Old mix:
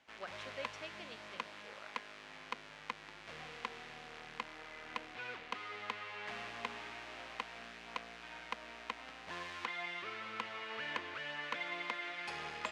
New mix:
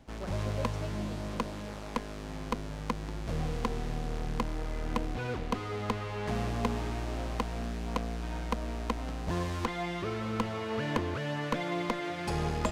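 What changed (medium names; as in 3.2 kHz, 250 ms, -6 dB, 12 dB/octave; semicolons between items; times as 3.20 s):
speech -8.5 dB; master: remove band-pass filter 2.3 kHz, Q 1.2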